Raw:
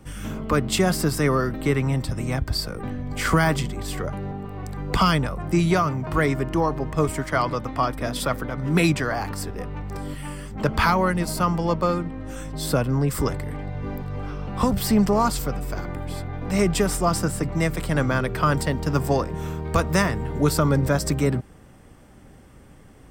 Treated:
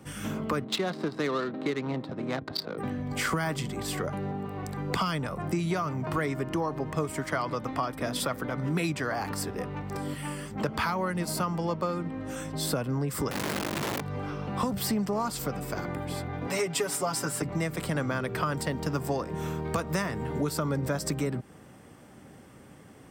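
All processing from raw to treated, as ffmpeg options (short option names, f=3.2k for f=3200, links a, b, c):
-filter_complex "[0:a]asettb=1/sr,asplit=3[a][b][c];[a]atrim=end=0.644[d];[b]atrim=start=0.64:end=2.78,asetpts=PTS-STARTPTS,afade=t=in:d=0.004:c=qsin,afade=t=out:st=2.136:d=0.004:c=qsin,highpass=230,adynamicsmooth=sensitivity=2.5:basefreq=770,equalizer=f=3.9k:t=o:w=0.29:g=10.5[e];[c]atrim=start=2.776[f];[d][e]acrossfade=d=0.004:c1=hsin:c2=qsin[g];[g][f]acrossfade=d=0.004:c1=qsin:c2=hsin,asettb=1/sr,asplit=3[h][i][j];[h]atrim=end=13.314[k];[i]atrim=start=13.31:end=14.01,asetpts=PTS-STARTPTS,afade=t=in:d=0.004:c=qsin,afade=t=out:st=0.696:d=0.004:c=qsin,lowshelf=f=120:g=9,aeval=exprs='(mod(13.3*val(0)+1,2)-1)/13.3':c=same[l];[j]atrim=start=14.006[m];[k][l]acrossfade=d=0.004:c1=hsin:c2=qsin[n];[n][m]acrossfade=d=0.004:c1=qsin:c2=hsin,asettb=1/sr,asplit=3[o][p][q];[o]atrim=end=16.474[r];[p]atrim=start=16.47:end=17.42,asetpts=PTS-STARTPTS,afade=t=in:d=0.004:c=qsin,afade=t=out:st=0.946:d=0.004:c=qsin,highpass=f=400:p=1,bandreject=f=670:w=12,aecho=1:1:7.2:0.96,atrim=end_sample=41895[s];[q]atrim=start=17.416[t];[r][s]acrossfade=d=0.004:c1=hsin:c2=qsin[u];[u][t]acrossfade=d=0.004:c1=qsin:c2=hsin,highpass=120,acompressor=threshold=-27dB:ratio=4"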